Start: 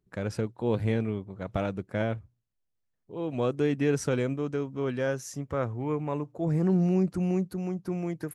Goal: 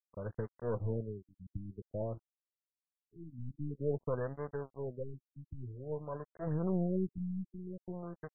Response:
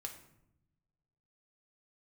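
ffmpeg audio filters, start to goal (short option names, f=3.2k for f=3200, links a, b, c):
-af "aecho=1:1:1.8:0.68,aeval=exprs='(tanh(6.31*val(0)+0.7)-tanh(0.7))/6.31':c=same,bandreject=f=790:w=12,aresample=11025,aeval=exprs='sgn(val(0))*max(abs(val(0))-0.00794,0)':c=same,aresample=44100,afftfilt=real='re*lt(b*sr/1024,290*pow(2100/290,0.5+0.5*sin(2*PI*0.51*pts/sr)))':imag='im*lt(b*sr/1024,290*pow(2100/290,0.5+0.5*sin(2*PI*0.51*pts/sr)))':win_size=1024:overlap=0.75,volume=-4dB"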